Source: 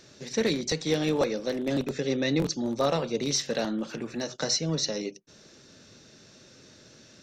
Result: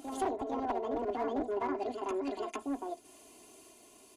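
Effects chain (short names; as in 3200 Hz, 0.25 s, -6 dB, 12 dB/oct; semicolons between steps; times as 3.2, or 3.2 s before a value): treble ducked by the level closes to 600 Hz, closed at -26 dBFS; bell 520 Hz -3 dB 1 oct; comb 5 ms, depth 78%; one-sided clip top -23.5 dBFS; reverse echo 0.778 s -3.5 dB; speed mistake 45 rpm record played at 78 rpm; gain -6.5 dB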